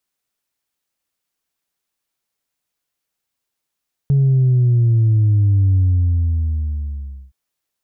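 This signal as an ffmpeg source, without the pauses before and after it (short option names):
-f lavfi -i "aevalsrc='0.282*clip((3.22-t)/1.56,0,1)*tanh(1.06*sin(2*PI*140*3.22/log(65/140)*(exp(log(65/140)*t/3.22)-1)))/tanh(1.06)':d=3.22:s=44100"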